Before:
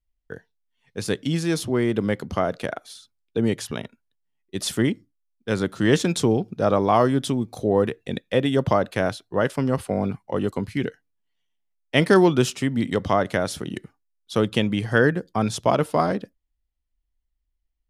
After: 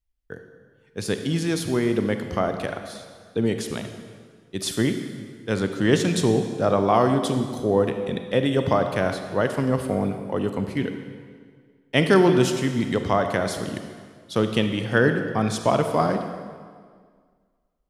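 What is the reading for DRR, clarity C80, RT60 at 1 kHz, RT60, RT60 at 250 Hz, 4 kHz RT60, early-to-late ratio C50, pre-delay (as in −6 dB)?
6.5 dB, 8.5 dB, 1.8 s, 1.8 s, 1.9 s, 1.5 s, 7.5 dB, 32 ms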